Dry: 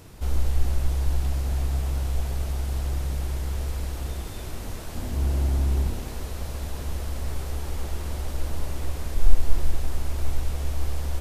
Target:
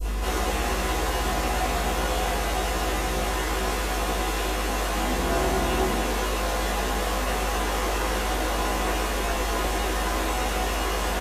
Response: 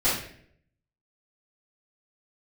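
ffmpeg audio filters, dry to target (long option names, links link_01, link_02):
-filter_complex "[0:a]highpass=290,aeval=exprs='val(0)+0.00398*(sin(2*PI*50*n/s)+sin(2*PI*2*50*n/s)/2+sin(2*PI*3*50*n/s)/3+sin(2*PI*4*50*n/s)/4+sin(2*PI*5*50*n/s)/5)':channel_layout=same,acompressor=mode=upward:threshold=-39dB:ratio=2.5,adynamicequalizer=threshold=0.00112:dfrequency=1700:dqfactor=0.71:tfrequency=1700:tqfactor=0.71:attack=5:release=100:ratio=0.375:range=3:mode=boostabove:tftype=bell,asplit=2[link_01][link_02];[link_02]adelay=16,volume=-2dB[link_03];[link_01][link_03]amix=inputs=2:normalize=0[link_04];[1:a]atrim=start_sample=2205,afade=type=out:start_time=0.16:duration=0.01,atrim=end_sample=7497,asetrate=61740,aresample=44100[link_05];[link_04][link_05]afir=irnorm=-1:irlink=0,volume=-1.5dB"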